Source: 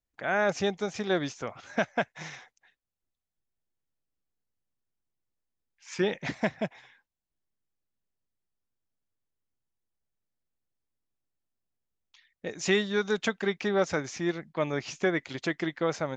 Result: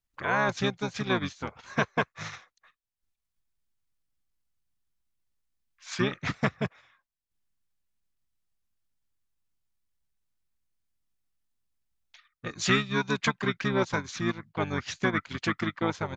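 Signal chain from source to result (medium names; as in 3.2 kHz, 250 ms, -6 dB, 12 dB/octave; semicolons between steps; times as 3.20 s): peaking EQ 510 Hz -8.5 dB 1.5 oct; transient shaper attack +1 dB, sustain -8 dB; harmony voices -7 st -2 dB; trim +2 dB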